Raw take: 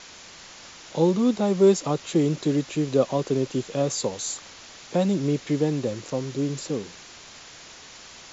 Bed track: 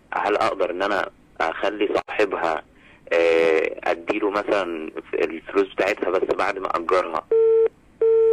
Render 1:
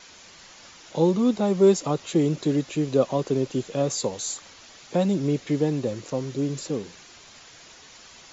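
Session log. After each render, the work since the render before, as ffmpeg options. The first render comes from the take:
ffmpeg -i in.wav -af "afftdn=noise_reduction=6:noise_floor=-46" out.wav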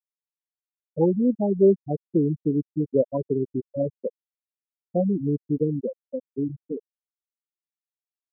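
ffmpeg -i in.wav -af "afftfilt=real='re*gte(hypot(re,im),0.316)':imag='im*gte(hypot(re,im),0.316)':win_size=1024:overlap=0.75,highshelf=frequency=3400:gain=7" out.wav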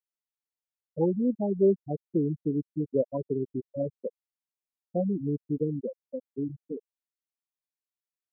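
ffmpeg -i in.wav -af "volume=-5dB" out.wav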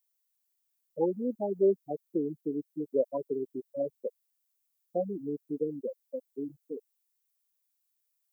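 ffmpeg -i in.wav -af "highpass=350,aemphasis=mode=production:type=75kf" out.wav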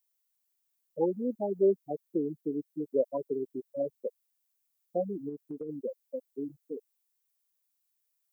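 ffmpeg -i in.wav -filter_complex "[0:a]asplit=3[link_01][link_02][link_03];[link_01]afade=type=out:start_time=5.28:duration=0.02[link_04];[link_02]acompressor=threshold=-35dB:ratio=6:attack=3.2:release=140:knee=1:detection=peak,afade=type=in:start_time=5.28:duration=0.02,afade=type=out:start_time=5.68:duration=0.02[link_05];[link_03]afade=type=in:start_time=5.68:duration=0.02[link_06];[link_04][link_05][link_06]amix=inputs=3:normalize=0" out.wav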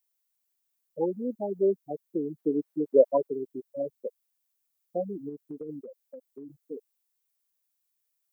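ffmpeg -i in.wav -filter_complex "[0:a]asettb=1/sr,asplit=3[link_01][link_02][link_03];[link_01]atrim=end=2.384[link_04];[link_02]atrim=start=2.38:end=3.27,asetpts=PTS-STARTPTS,afade=type=in:duration=0.004:curve=qsin,afade=type=out:start_time=0.886:duration=0.004:curve=qsin,equalizer=frequency=790:width=0.38:gain=10[link_05];[link_03]atrim=start=3.266[link_06];[link_04][link_05]acrossfade=duration=0.004:curve1=hsin:curve2=qsin[link_07];[link_07][link_06]acrossfade=duration=0.004:curve1=qsin:curve2=hsin,asettb=1/sr,asplit=3[link_08][link_09][link_10];[link_08]atrim=end=5.794[link_11];[link_09]atrim=start=5.79:end=6.58,asetpts=PTS-STARTPTS,afade=type=in:duration=0.004:curve=qsin,afade=type=out:start_time=0.786:duration=0.004:curve=qsin,acompressor=threshold=-40dB:ratio=6:attack=3.2:release=140:knee=1:detection=peak[link_12];[link_10]atrim=start=6.576[link_13];[link_11][link_12]acrossfade=duration=0.004:curve1=hsin:curve2=qsin[link_14];[link_14][link_13]acrossfade=duration=0.004:curve1=qsin:curve2=hsin" out.wav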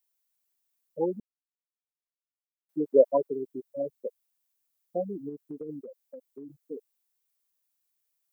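ffmpeg -i in.wav -filter_complex "[0:a]asplit=3[link_01][link_02][link_03];[link_01]atrim=end=1.2,asetpts=PTS-STARTPTS,afade=type=out:start_time=1.196:duration=0.004:curve=hsin[link_04];[link_02]atrim=start=1.2:end=2.69,asetpts=PTS-STARTPTS,volume=0[link_05];[link_03]atrim=start=2.69,asetpts=PTS-STARTPTS,afade=type=in:duration=0.004:curve=hsin[link_06];[link_04][link_05][link_06]concat=n=3:v=0:a=1" out.wav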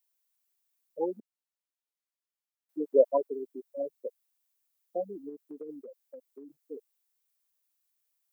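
ffmpeg -i in.wav -af "highpass=frequency=220:width=0.5412,highpass=frequency=220:width=1.3066,lowshelf=frequency=320:gain=-8" out.wav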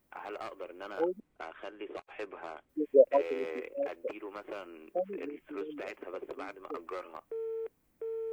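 ffmpeg -i in.wav -i bed.wav -filter_complex "[1:a]volume=-21dB[link_01];[0:a][link_01]amix=inputs=2:normalize=0" out.wav

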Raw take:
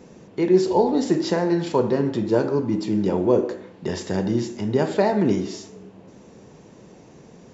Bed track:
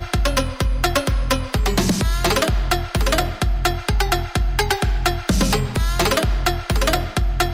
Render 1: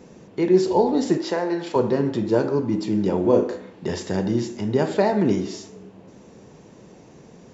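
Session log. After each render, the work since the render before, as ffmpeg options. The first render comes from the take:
ffmpeg -i in.wav -filter_complex "[0:a]asettb=1/sr,asplit=3[link_01][link_02][link_03];[link_01]atrim=end=1.174[link_04];[link_02]atrim=start=1.17:end=1.76,asetpts=PTS-STARTPTS,afade=type=in:duration=0.004:curve=qsin,afade=type=out:start_time=0.586:duration=0.004:curve=qsin,bass=frequency=250:gain=-14,treble=frequency=4000:gain=-4[link_05];[link_03]atrim=start=1.756[link_06];[link_04][link_05]acrossfade=duration=0.004:curve1=hsin:curve2=qsin[link_07];[link_07][link_06]acrossfade=duration=0.004:curve1=qsin:curve2=hsin,asettb=1/sr,asplit=3[link_08][link_09][link_10];[link_08]atrim=end=3.214[link_11];[link_09]atrim=start=3.21:end=3.95,asetpts=PTS-STARTPTS,afade=type=in:duration=0.004:curve=qsin,afade=type=out:start_time=0.736:duration=0.004:curve=qsin,asplit=2[link_12][link_13];[link_13]adelay=36,volume=-5dB[link_14];[link_12][link_14]amix=inputs=2:normalize=0,atrim=end_sample=32634[link_15];[link_10]atrim=start=3.946[link_16];[link_11][link_15]acrossfade=duration=0.004:curve1=hsin:curve2=qsin[link_17];[link_17][link_16]acrossfade=duration=0.004:curve1=qsin:curve2=hsin" out.wav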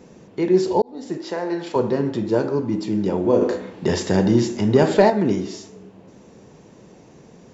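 ffmpeg -i in.wav -filter_complex "[0:a]asettb=1/sr,asplit=3[link_01][link_02][link_03];[link_01]atrim=end=3.414[link_04];[link_02]atrim=start=3.41:end=5.1,asetpts=PTS-STARTPTS,afade=type=in:duration=0.004:curve=qsin,afade=type=out:start_time=1.686:duration=0.004:curve=qsin,acontrast=62[link_05];[link_03]atrim=start=5.096[link_06];[link_04][link_05]acrossfade=duration=0.004:curve1=hsin:curve2=qsin[link_07];[link_07][link_06]acrossfade=duration=0.004:curve1=qsin:curve2=hsin,asplit=2[link_08][link_09];[link_08]atrim=end=0.82,asetpts=PTS-STARTPTS,afade=type=out:start_time=0.816:duration=0.004:curve=hsin[link_10];[link_09]atrim=start=0.82,asetpts=PTS-STARTPTS,afade=type=in:duration=0.72[link_11];[link_10][link_11]concat=n=2:v=0:a=1" out.wav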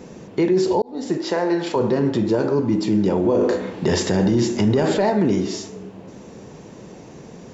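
ffmpeg -i in.wav -filter_complex "[0:a]asplit=2[link_01][link_02];[link_02]acompressor=threshold=-25dB:ratio=6,volume=1.5dB[link_03];[link_01][link_03]amix=inputs=2:normalize=0,alimiter=limit=-10.5dB:level=0:latency=1:release=11" out.wav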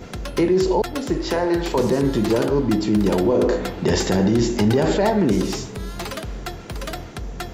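ffmpeg -i in.wav -i bed.wav -filter_complex "[1:a]volume=-12dB[link_01];[0:a][link_01]amix=inputs=2:normalize=0" out.wav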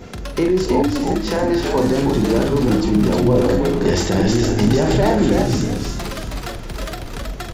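ffmpeg -i in.wav -filter_complex "[0:a]asplit=2[link_01][link_02];[link_02]adelay=44,volume=-8dB[link_03];[link_01][link_03]amix=inputs=2:normalize=0,asplit=5[link_04][link_05][link_06][link_07][link_08];[link_05]adelay=319,afreqshift=-81,volume=-3dB[link_09];[link_06]adelay=638,afreqshift=-162,volume=-12.6dB[link_10];[link_07]adelay=957,afreqshift=-243,volume=-22.3dB[link_11];[link_08]adelay=1276,afreqshift=-324,volume=-31.9dB[link_12];[link_04][link_09][link_10][link_11][link_12]amix=inputs=5:normalize=0" out.wav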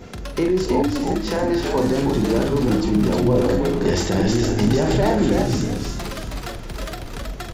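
ffmpeg -i in.wav -af "volume=-2.5dB" out.wav

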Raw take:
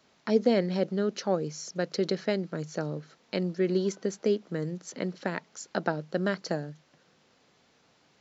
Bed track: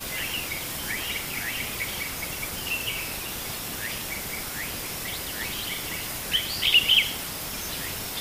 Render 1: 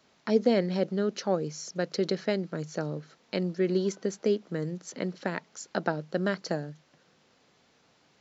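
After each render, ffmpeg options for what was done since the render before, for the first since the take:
ffmpeg -i in.wav -af anull out.wav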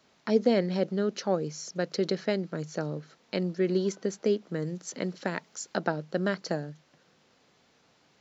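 ffmpeg -i in.wav -filter_complex "[0:a]asettb=1/sr,asplit=3[link_01][link_02][link_03];[link_01]atrim=end=4.664[link_04];[link_02]atrim=start=4.66:end=5.77,asetpts=PTS-STARTPTS,afade=type=in:duration=0.004:curve=qsin,afade=type=out:start_time=1.106:duration=0.004:curve=qsin,highshelf=frequency=6200:gain=7[link_05];[link_03]atrim=start=5.766[link_06];[link_04][link_05]acrossfade=duration=0.004:curve1=hsin:curve2=qsin[link_07];[link_07][link_06]acrossfade=duration=0.004:curve1=qsin:curve2=hsin" out.wav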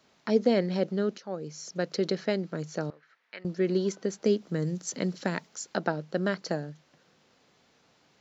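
ffmpeg -i in.wav -filter_complex "[0:a]asettb=1/sr,asplit=3[link_01][link_02][link_03];[link_01]atrim=end=2.904[link_04];[link_02]atrim=start=2.9:end=3.45,asetpts=PTS-STARTPTS,afade=type=in:duration=0.004:curve=qsin,afade=type=out:start_time=0.546:duration=0.004:curve=qsin,bandpass=frequency=1800:width_type=q:width=2.2[link_05];[link_03]atrim=start=3.446[link_06];[link_04][link_05]acrossfade=duration=0.004:curve1=hsin:curve2=qsin[link_07];[link_07][link_06]acrossfade=duration=0.004:curve1=qsin:curve2=hsin,asettb=1/sr,asplit=3[link_08][link_09][link_10];[link_08]atrim=end=4.224[link_11];[link_09]atrim=start=4.22:end=5.47,asetpts=PTS-STARTPTS,afade=type=in:duration=0.004:curve=qsin,afade=type=out:start_time=1.246:duration=0.004:curve=qsin,bass=frequency=250:gain=5,treble=frequency=4000:gain=5[link_12];[link_10]atrim=start=5.466[link_13];[link_11][link_12]acrossfade=duration=0.004:curve1=hsin:curve2=qsin[link_14];[link_14][link_13]acrossfade=duration=0.004:curve1=qsin:curve2=hsin,asplit=2[link_15][link_16];[link_15]atrim=end=1.18,asetpts=PTS-STARTPTS,afade=type=out:start_time=1.176:duration=0.004:curve=hsin:silence=0.177828[link_17];[link_16]atrim=start=1.18,asetpts=PTS-STARTPTS,afade=type=in:duration=0.6:silence=0.177828[link_18];[link_17][link_18]concat=n=2:v=0:a=1" out.wav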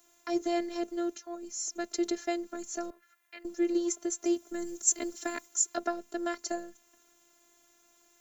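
ffmpeg -i in.wav -filter_complex "[0:a]acrossover=split=120|2200[link_01][link_02][link_03];[link_03]aexciter=amount=13.4:drive=3.8:freq=6900[link_04];[link_01][link_02][link_04]amix=inputs=3:normalize=0,afftfilt=real='hypot(re,im)*cos(PI*b)':imag='0':win_size=512:overlap=0.75" out.wav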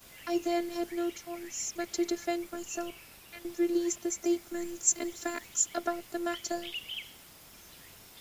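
ffmpeg -i in.wav -i bed.wav -filter_complex "[1:a]volume=-20.5dB[link_01];[0:a][link_01]amix=inputs=2:normalize=0" out.wav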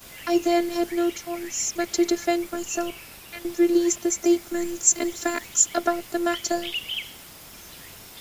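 ffmpeg -i in.wav -af "volume=9dB,alimiter=limit=-3dB:level=0:latency=1" out.wav

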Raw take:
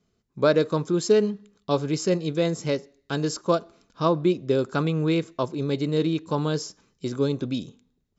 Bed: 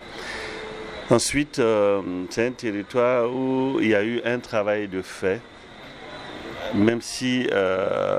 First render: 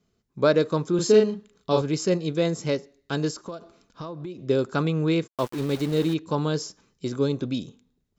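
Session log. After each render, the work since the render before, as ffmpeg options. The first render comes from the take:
ffmpeg -i in.wav -filter_complex "[0:a]asettb=1/sr,asplit=3[link_01][link_02][link_03];[link_01]atrim=end=0.954[link_04];[link_02]atrim=start=0.95:end=1.82,asetpts=PTS-STARTPTS,afade=type=in:duration=0.004:curve=qsin,afade=type=out:start_time=0.866:duration=0.004:curve=qsin,asplit=2[link_05][link_06];[link_06]adelay=37,volume=-3dB[link_07];[link_05][link_07]amix=inputs=2:normalize=0,atrim=end_sample=38367[link_08];[link_03]atrim=start=1.816[link_09];[link_04][link_08]acrossfade=duration=0.004:curve1=hsin:curve2=qsin[link_10];[link_10][link_09]acrossfade=duration=0.004:curve1=qsin:curve2=hsin,asplit=3[link_11][link_12][link_13];[link_11]afade=type=out:start_time=3.3:duration=0.02[link_14];[link_12]acompressor=threshold=-32dB:ratio=8:attack=3.2:release=140:knee=1:detection=peak,afade=type=in:start_time=3.3:duration=0.02,afade=type=out:start_time=4.38:duration=0.02[link_15];[link_13]afade=type=in:start_time=4.38:duration=0.02[link_16];[link_14][link_15][link_16]amix=inputs=3:normalize=0,asplit=3[link_17][link_18][link_19];[link_17]afade=type=out:start_time=5.26:duration=0.02[link_20];[link_18]aeval=exprs='val(0)*gte(abs(val(0)),0.02)':channel_layout=same,afade=type=in:start_time=5.26:duration=0.02,afade=type=out:start_time=6.13:duration=0.02[link_21];[link_19]afade=type=in:start_time=6.13:duration=0.02[link_22];[link_20][link_21][link_22]amix=inputs=3:normalize=0" out.wav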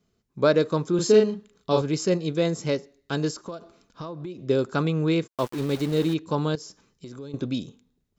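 ffmpeg -i in.wav -filter_complex "[0:a]asettb=1/sr,asplit=3[link_01][link_02][link_03];[link_01]atrim=end=6.554[link_04];[link_02]atrim=start=6.55:end=7.34,asetpts=PTS-STARTPTS,afade=type=in:duration=0.004:curve=qsin,afade=type=out:start_time=0.786:duration=0.004:curve=qsin,acompressor=threshold=-38dB:ratio=4:attack=3.2:release=140:knee=1:detection=peak[link_05];[link_03]atrim=start=7.336[link_06];[link_04][link_05]acrossfade=duration=0.004:curve1=hsin:curve2=qsin[link_07];[link_07][link_06]acrossfade=duration=0.004:curve1=qsin:curve2=hsin" out.wav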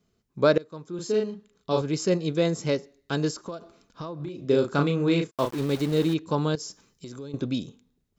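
ffmpeg -i in.wav -filter_complex "[0:a]asettb=1/sr,asplit=3[link_01][link_02][link_03];[link_01]atrim=end=4.164[link_04];[link_02]atrim=start=4.16:end=5.51,asetpts=PTS-STARTPTS,afade=type=in:duration=0.004:curve=qsin,afade=type=out:start_time=1.346:duration=0.004:curve=qsin,asplit=2[link_05][link_06];[link_06]adelay=35,volume=-5.5dB[link_07];[link_05][link_07]amix=inputs=2:normalize=0,atrim=end_sample=59535[link_08];[link_03]atrim=start=5.506[link_09];[link_04][link_08]acrossfade=duration=0.004:curve1=hsin:curve2=qsin[link_10];[link_10][link_09]acrossfade=duration=0.004:curve1=qsin:curve2=hsin,asettb=1/sr,asplit=3[link_11][link_12][link_13];[link_11]atrim=end=6.594[link_14];[link_12]atrim=start=6.59:end=7.23,asetpts=PTS-STARTPTS,afade=type=in:duration=0.004:curve=qsin,afade=type=out:start_time=0.636:duration=0.004:curve=qsin,highshelf=frequency=4900:gain=8[link_15];[link_13]atrim=start=7.226[link_16];[link_14][link_15]acrossfade=duration=0.004:curve1=hsin:curve2=qsin[link_17];[link_17][link_16]acrossfade=duration=0.004:curve1=qsin:curve2=hsin,asplit=2[link_18][link_19];[link_18]atrim=end=0.58,asetpts=PTS-STARTPTS,afade=type=out:start_time=0.576:duration=0.004:curve=hsin:silence=0.0707946[link_20];[link_19]atrim=start=0.58,asetpts=PTS-STARTPTS,afade=type=in:duration=1.64:silence=0.0707946[link_21];[link_20][link_21]concat=n=2:v=0:a=1" out.wav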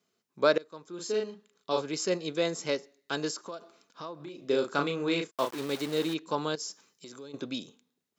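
ffmpeg -i in.wav -af "highpass=200,lowshelf=frequency=450:gain=-9.5" out.wav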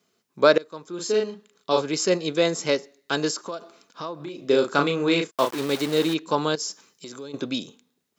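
ffmpeg -i in.wav -af "volume=7.5dB,alimiter=limit=-2dB:level=0:latency=1" out.wav

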